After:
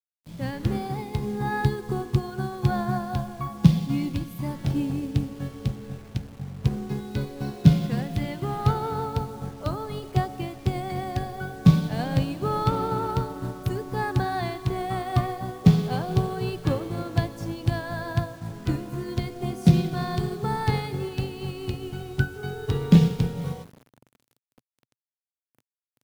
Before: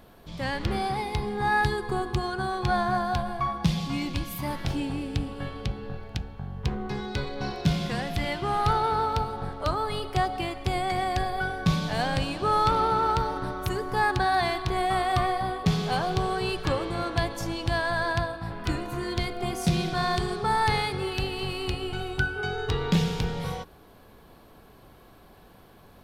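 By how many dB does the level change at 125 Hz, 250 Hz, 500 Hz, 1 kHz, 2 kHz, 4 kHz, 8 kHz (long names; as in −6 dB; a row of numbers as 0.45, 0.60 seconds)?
+6.5, +5.5, −1.0, −5.5, −7.0, −6.0, −3.5 decibels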